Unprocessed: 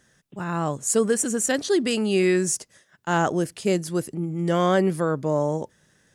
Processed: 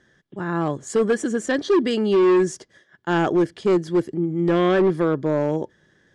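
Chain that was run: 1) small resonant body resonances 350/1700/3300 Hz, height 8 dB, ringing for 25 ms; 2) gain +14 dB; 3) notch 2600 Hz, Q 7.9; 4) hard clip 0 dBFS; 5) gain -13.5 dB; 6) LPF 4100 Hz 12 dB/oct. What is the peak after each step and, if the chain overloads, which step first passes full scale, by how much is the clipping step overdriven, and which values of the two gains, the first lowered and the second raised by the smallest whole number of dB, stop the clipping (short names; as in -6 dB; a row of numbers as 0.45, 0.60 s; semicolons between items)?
-5.5, +8.5, +8.5, 0.0, -13.5, -13.0 dBFS; step 2, 8.5 dB; step 2 +5 dB, step 5 -4.5 dB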